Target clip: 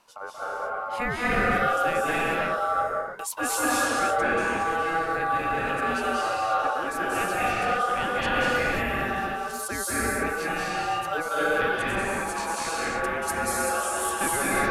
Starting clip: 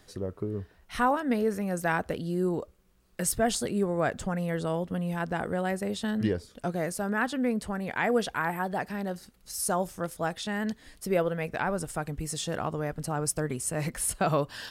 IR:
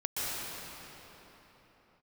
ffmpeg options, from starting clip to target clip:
-filter_complex "[0:a]aeval=exprs='val(0)*sin(2*PI*980*n/s)':c=same[a];[1:a]atrim=start_sample=2205,afade=t=out:st=0.41:d=0.01,atrim=end_sample=18522,asetrate=28665,aresample=44100[b];[a][b]afir=irnorm=-1:irlink=0,acontrast=85,volume=-9dB"

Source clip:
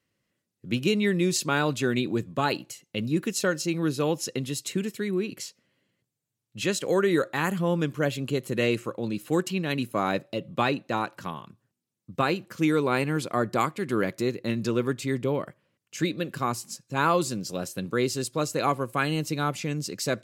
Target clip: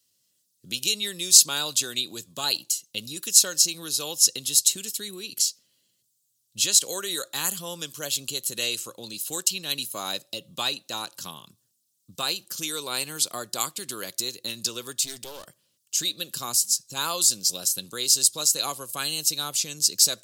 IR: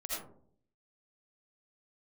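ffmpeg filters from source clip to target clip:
-filter_complex "[0:a]acrossover=split=520[a][b];[a]acompressor=threshold=-35dB:ratio=6[c];[c][b]amix=inputs=2:normalize=0,asettb=1/sr,asplit=3[d][e][f];[d]atrim=end=15.034[g];[e]atrim=start=15.03:end=15.45,asetpts=PTS-STARTPTS,afade=t=in:d=0.004:c=qsin,afade=t=out:st=0.416:d=0.004:c=qsin,aeval=exprs='clip(val(0),-1,0.00944)':c=same[h];[f]atrim=start=15.446[i];[g][h]acrossfade=d=0.004:c1=hsin:c2=qsin[j];[j][i]acrossfade=d=0.004:c1=qsin:c2=hsin,aexciter=amount=10.4:drive=5.7:freq=3.2k,volume=-7dB"

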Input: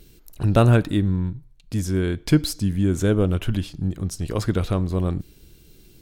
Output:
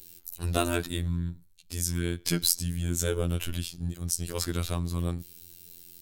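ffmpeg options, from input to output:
-af "afftfilt=real='hypot(re,im)*cos(PI*b)':imag='0':win_size=2048:overlap=0.75,crystalizer=i=5:c=0,volume=-6dB"

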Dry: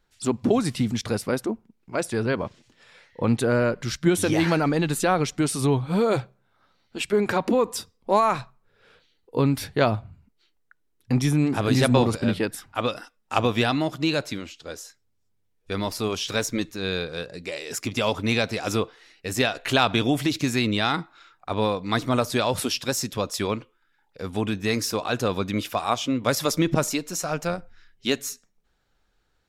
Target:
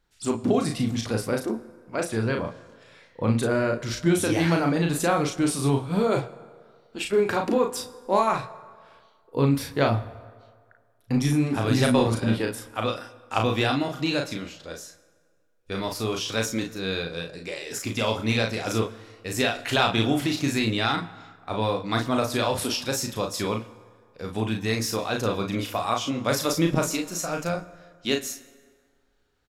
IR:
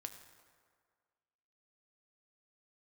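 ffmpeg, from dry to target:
-filter_complex "[0:a]aecho=1:1:36|53:0.631|0.251,asplit=2[a][b];[1:a]atrim=start_sample=2205[c];[b][c]afir=irnorm=-1:irlink=0,volume=1dB[d];[a][d]amix=inputs=2:normalize=0,volume=-7dB"

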